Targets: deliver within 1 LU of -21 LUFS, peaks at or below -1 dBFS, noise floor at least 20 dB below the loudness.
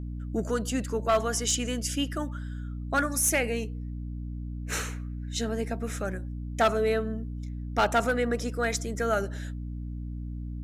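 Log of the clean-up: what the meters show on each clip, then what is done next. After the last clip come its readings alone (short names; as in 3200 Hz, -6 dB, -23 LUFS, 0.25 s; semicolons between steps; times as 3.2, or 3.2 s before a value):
clipped 0.4%; flat tops at -17.0 dBFS; hum 60 Hz; harmonics up to 300 Hz; hum level -33 dBFS; loudness -29.5 LUFS; peak -17.0 dBFS; loudness target -21.0 LUFS
-> clip repair -17 dBFS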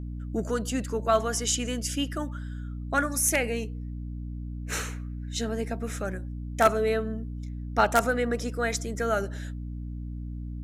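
clipped 0.0%; hum 60 Hz; harmonics up to 300 Hz; hum level -33 dBFS
-> de-hum 60 Hz, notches 5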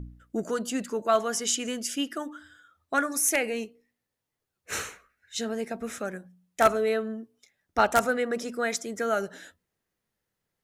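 hum none; loudness -28.0 LUFS; peak -7.0 dBFS; loudness target -21.0 LUFS
-> gain +7 dB; limiter -1 dBFS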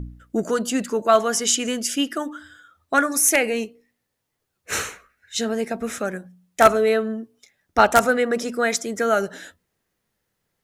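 loudness -21.0 LUFS; peak -1.0 dBFS; noise floor -77 dBFS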